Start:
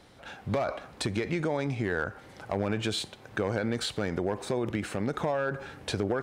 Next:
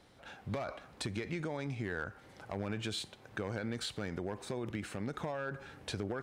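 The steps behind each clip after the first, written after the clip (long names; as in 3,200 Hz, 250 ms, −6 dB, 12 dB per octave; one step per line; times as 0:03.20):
dynamic equaliser 570 Hz, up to −4 dB, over −42 dBFS, Q 0.7
level −6.5 dB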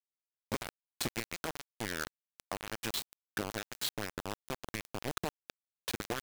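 harmonic and percussive parts rebalanced harmonic −16 dB
bit-depth reduction 6 bits, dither none
level +4 dB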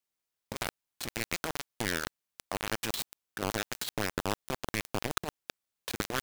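compressor whose output falls as the input rises −38 dBFS, ratio −0.5
level +6 dB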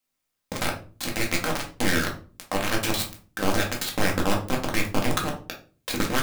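rectangular room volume 250 cubic metres, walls furnished, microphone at 2.1 metres
level +4.5 dB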